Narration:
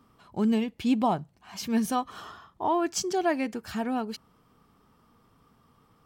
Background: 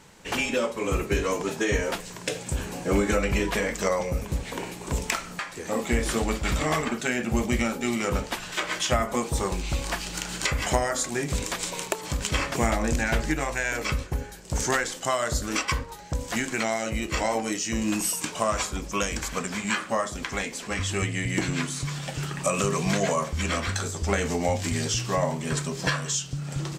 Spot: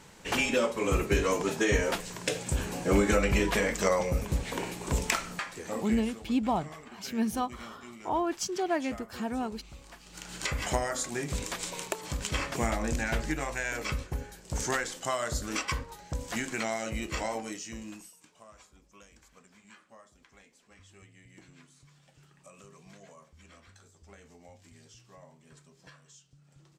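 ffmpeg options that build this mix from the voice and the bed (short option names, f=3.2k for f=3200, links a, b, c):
-filter_complex "[0:a]adelay=5450,volume=-3.5dB[a];[1:a]volume=14.5dB,afade=t=out:st=5.23:d=0.91:silence=0.1,afade=t=in:st=10.04:d=0.49:silence=0.16788,afade=t=out:st=17.04:d=1.07:silence=0.0707946[b];[a][b]amix=inputs=2:normalize=0"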